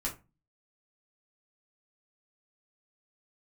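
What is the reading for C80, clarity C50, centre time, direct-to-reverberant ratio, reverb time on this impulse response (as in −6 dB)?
18.5 dB, 12.0 dB, 17 ms, −3.0 dB, 0.25 s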